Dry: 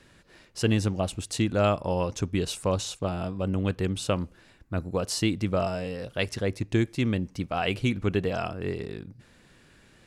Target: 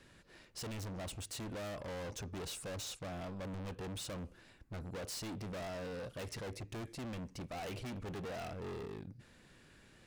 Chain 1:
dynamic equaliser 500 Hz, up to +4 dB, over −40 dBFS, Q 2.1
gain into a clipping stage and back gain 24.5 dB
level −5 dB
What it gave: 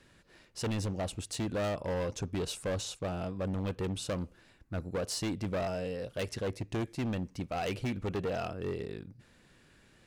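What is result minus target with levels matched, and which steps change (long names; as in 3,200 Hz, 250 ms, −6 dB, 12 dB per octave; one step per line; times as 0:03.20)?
gain into a clipping stage and back: distortion −6 dB
change: gain into a clipping stage and back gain 36.5 dB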